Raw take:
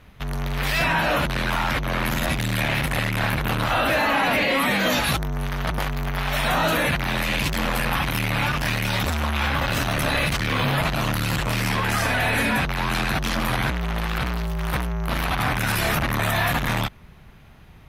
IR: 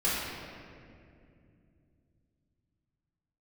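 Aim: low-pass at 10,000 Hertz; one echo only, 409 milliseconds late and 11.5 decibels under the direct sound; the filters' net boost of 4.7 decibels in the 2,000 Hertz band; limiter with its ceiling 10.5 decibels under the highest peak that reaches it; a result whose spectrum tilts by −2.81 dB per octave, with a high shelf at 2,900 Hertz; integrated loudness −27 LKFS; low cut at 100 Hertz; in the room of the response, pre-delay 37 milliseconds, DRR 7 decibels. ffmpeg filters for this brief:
-filter_complex "[0:a]highpass=100,lowpass=10000,equalizer=frequency=2000:width_type=o:gain=7,highshelf=frequency=2900:gain=-3,alimiter=limit=-17dB:level=0:latency=1,aecho=1:1:409:0.266,asplit=2[link_01][link_02];[1:a]atrim=start_sample=2205,adelay=37[link_03];[link_02][link_03]afir=irnorm=-1:irlink=0,volume=-18dB[link_04];[link_01][link_04]amix=inputs=2:normalize=0,volume=-2dB"

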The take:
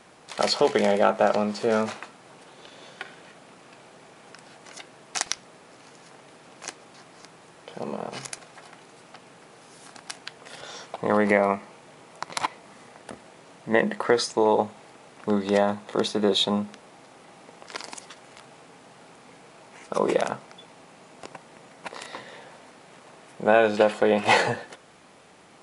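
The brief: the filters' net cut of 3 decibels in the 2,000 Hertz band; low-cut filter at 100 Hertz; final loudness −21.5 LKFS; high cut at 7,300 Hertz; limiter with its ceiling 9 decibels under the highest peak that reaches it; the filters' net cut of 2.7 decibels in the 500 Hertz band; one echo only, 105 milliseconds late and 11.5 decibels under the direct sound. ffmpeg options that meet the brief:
ffmpeg -i in.wav -af "highpass=100,lowpass=7300,equalizer=frequency=500:width_type=o:gain=-3,equalizer=frequency=2000:width_type=o:gain=-3.5,alimiter=limit=-14dB:level=0:latency=1,aecho=1:1:105:0.266,volume=7.5dB" out.wav

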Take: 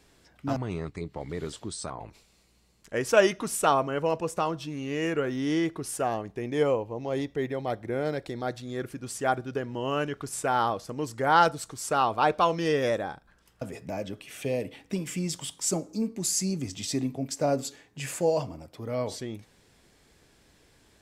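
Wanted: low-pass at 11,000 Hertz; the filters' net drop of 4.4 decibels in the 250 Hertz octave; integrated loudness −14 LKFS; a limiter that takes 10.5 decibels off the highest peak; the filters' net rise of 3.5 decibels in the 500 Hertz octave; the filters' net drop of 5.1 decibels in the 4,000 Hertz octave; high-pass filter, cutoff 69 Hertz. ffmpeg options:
ffmpeg -i in.wav -af "highpass=69,lowpass=11000,equalizer=frequency=250:width_type=o:gain=-9,equalizer=frequency=500:width_type=o:gain=6.5,equalizer=frequency=4000:width_type=o:gain=-7.5,volume=15.5dB,alimiter=limit=-0.5dB:level=0:latency=1" out.wav

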